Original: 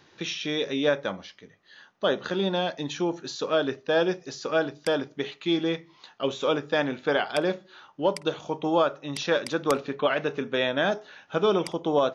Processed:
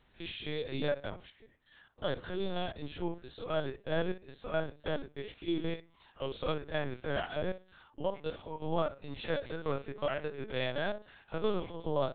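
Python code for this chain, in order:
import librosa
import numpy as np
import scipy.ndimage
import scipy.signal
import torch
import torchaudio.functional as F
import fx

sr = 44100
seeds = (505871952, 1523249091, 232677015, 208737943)

y = fx.spec_steps(x, sr, hold_ms=50)
y = fx.lpc_vocoder(y, sr, seeds[0], excitation='pitch_kept', order=10)
y = y * 10.0 ** (-7.5 / 20.0)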